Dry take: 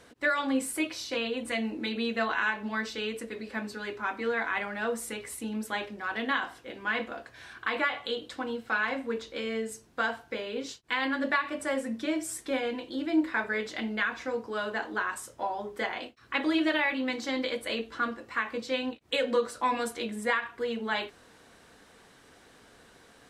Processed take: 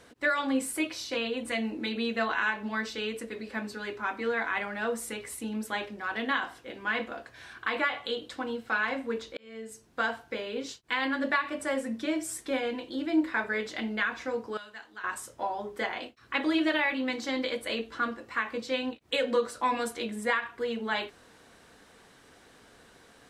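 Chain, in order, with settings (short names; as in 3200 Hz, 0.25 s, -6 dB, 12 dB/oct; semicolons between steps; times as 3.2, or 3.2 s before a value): 9.37–10 fade in; 14.57–15.04 passive tone stack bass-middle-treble 5-5-5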